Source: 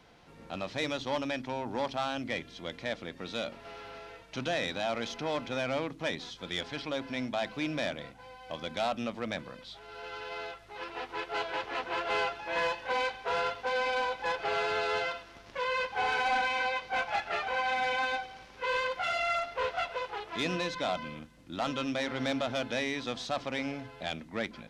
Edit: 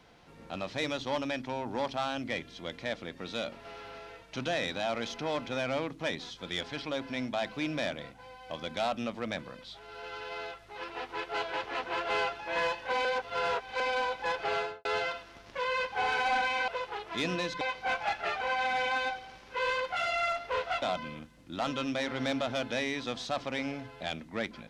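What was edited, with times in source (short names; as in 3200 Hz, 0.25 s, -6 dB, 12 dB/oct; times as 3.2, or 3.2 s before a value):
13.05–13.8 reverse
14.54–14.85 studio fade out
19.89–20.82 move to 16.68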